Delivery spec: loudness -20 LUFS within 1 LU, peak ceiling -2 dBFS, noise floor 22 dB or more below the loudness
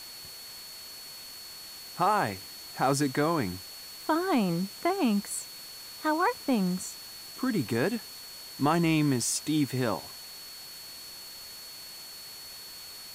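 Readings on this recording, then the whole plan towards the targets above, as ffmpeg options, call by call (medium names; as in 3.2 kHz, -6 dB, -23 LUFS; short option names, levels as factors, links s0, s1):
steady tone 4.4 kHz; tone level -44 dBFS; noise floor -45 dBFS; noise floor target -51 dBFS; loudness -29.0 LUFS; peak level -12.5 dBFS; loudness target -20.0 LUFS
-> -af "bandreject=f=4400:w=30"
-af "afftdn=nr=6:nf=-45"
-af "volume=2.82"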